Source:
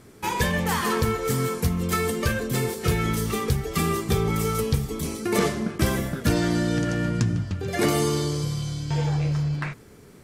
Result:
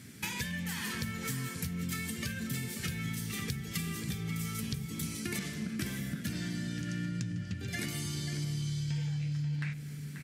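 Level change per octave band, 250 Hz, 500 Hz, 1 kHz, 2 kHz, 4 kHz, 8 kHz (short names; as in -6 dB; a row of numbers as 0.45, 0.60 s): -10.5, -23.0, -19.5, -9.0, -8.0, -8.0 dB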